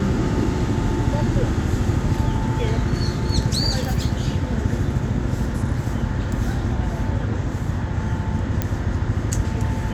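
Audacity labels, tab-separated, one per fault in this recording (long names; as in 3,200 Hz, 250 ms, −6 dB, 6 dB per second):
8.620000	8.620000	click −8 dBFS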